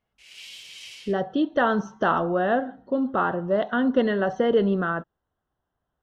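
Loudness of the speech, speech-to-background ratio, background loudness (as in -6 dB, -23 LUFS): -24.0 LUFS, 17.5 dB, -41.5 LUFS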